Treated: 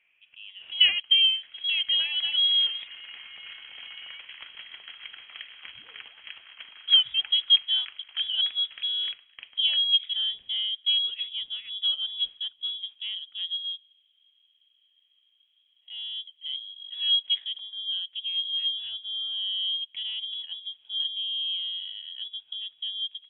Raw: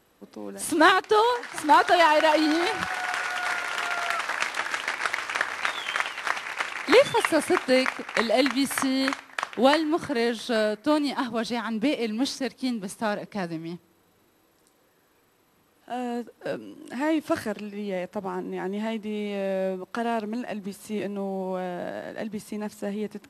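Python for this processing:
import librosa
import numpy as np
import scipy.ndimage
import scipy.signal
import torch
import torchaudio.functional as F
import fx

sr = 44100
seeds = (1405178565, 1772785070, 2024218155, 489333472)

y = fx.filter_sweep_bandpass(x, sr, from_hz=1200.0, to_hz=360.0, start_s=0.03, end_s=1.55, q=4.2)
y = fx.freq_invert(y, sr, carrier_hz=3600)
y = y * 10.0 ** (5.5 / 20.0)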